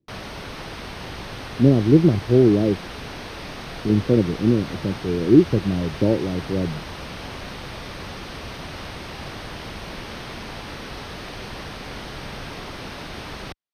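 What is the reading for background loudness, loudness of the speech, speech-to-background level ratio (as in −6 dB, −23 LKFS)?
−34.5 LKFS, −19.5 LKFS, 15.0 dB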